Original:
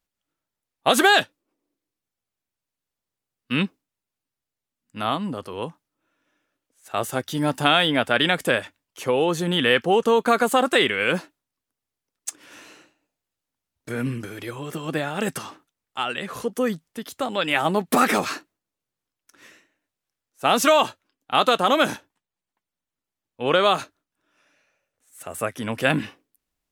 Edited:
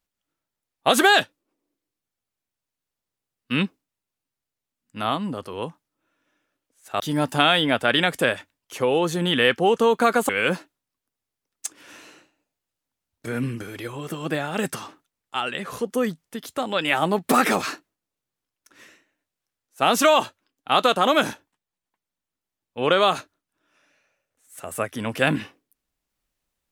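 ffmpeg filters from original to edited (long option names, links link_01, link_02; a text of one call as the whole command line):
ffmpeg -i in.wav -filter_complex "[0:a]asplit=3[link_01][link_02][link_03];[link_01]atrim=end=7.002[link_04];[link_02]atrim=start=7.258:end=10.552[link_05];[link_03]atrim=start=10.918[link_06];[link_04][link_05]acrossfade=duration=0.004:curve1=hsin:curve2=hsin[link_07];[link_07][link_06]acrossfade=duration=0.004:curve1=hsin:curve2=hsin" out.wav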